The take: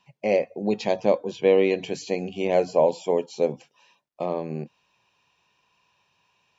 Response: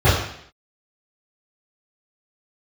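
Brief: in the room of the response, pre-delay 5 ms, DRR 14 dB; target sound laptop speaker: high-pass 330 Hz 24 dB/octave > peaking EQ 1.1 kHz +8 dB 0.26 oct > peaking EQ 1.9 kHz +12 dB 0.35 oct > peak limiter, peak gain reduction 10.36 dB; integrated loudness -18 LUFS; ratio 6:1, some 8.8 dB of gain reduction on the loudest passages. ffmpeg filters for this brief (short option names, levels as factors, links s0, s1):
-filter_complex "[0:a]acompressor=threshold=0.0708:ratio=6,asplit=2[s0][s1];[1:a]atrim=start_sample=2205,adelay=5[s2];[s1][s2]afir=irnorm=-1:irlink=0,volume=0.0133[s3];[s0][s3]amix=inputs=2:normalize=0,highpass=f=330:w=0.5412,highpass=f=330:w=1.3066,equalizer=f=1100:t=o:w=0.26:g=8,equalizer=f=1900:t=o:w=0.35:g=12,volume=7.08,alimiter=limit=0.422:level=0:latency=1"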